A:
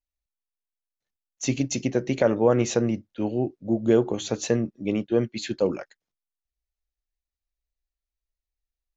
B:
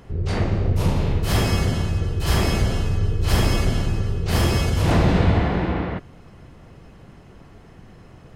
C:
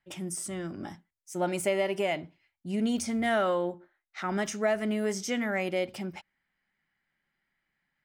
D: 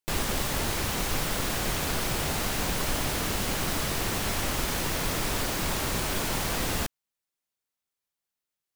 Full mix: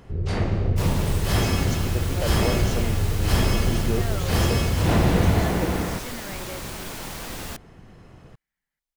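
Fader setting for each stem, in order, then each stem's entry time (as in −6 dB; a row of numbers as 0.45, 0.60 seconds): −9.0, −2.0, −9.5, −5.5 decibels; 0.00, 0.00, 0.75, 0.70 seconds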